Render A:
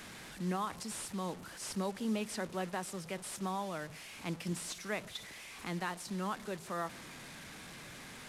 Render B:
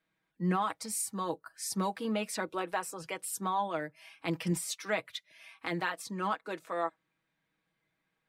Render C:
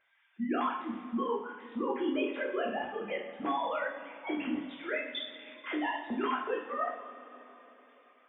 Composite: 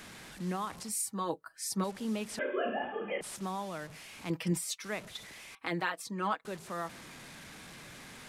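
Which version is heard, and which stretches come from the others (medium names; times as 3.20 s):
A
0.89–1.84 s: from B
2.39–3.21 s: from C
4.30–4.84 s: from B
5.55–6.45 s: from B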